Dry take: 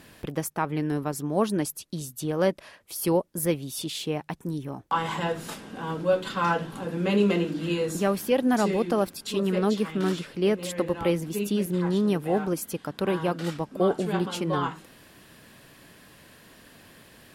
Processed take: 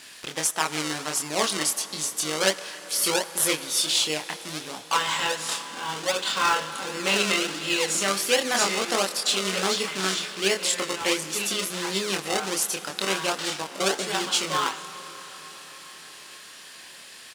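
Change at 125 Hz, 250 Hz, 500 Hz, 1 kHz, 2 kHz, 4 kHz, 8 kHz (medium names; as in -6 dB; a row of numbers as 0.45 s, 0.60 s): -10.5 dB, -7.5 dB, -3.0 dB, +2.5 dB, +8.5 dB, +13.0 dB, +13.0 dB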